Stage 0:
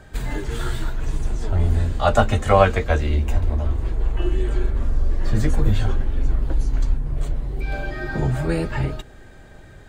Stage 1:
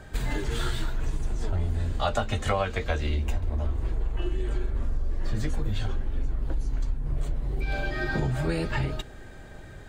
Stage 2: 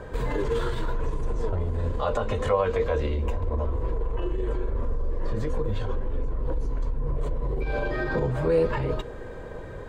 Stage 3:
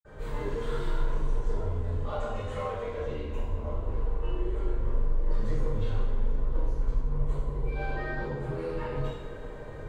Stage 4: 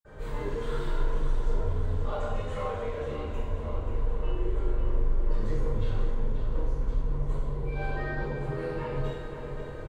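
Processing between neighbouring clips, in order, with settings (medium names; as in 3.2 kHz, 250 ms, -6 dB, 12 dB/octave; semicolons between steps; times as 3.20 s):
dynamic bell 3.8 kHz, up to +6 dB, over -43 dBFS, Q 0.83; compression 6:1, threshold -23 dBFS, peak gain reduction 14.5 dB
treble shelf 3.1 kHz -10 dB; peak limiter -24.5 dBFS, peak gain reduction 11 dB; small resonant body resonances 490/1000 Hz, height 16 dB, ringing for 40 ms; trim +4 dB
gain riding within 3 dB 0.5 s; hard clipper -18.5 dBFS, distortion -25 dB; reverberation, pre-delay 46 ms
feedback delay 535 ms, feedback 59%, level -9.5 dB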